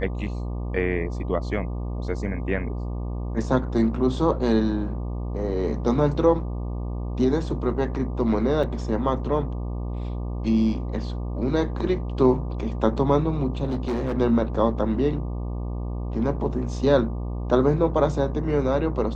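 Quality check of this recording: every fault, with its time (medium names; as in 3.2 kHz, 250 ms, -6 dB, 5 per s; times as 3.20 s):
buzz 60 Hz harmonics 20 -29 dBFS
8.63–8.64 s: dropout 5.2 ms
13.64–14.14 s: clipped -22 dBFS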